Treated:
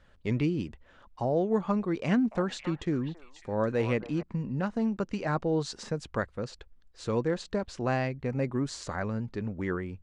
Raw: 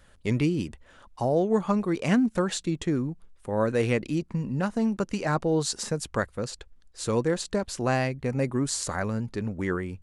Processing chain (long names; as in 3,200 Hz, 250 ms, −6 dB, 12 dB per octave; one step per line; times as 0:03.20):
high-frequency loss of the air 120 metres
0:02.04–0:04.23: echo through a band-pass that steps 273 ms, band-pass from 930 Hz, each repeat 1.4 octaves, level −6 dB
level −3 dB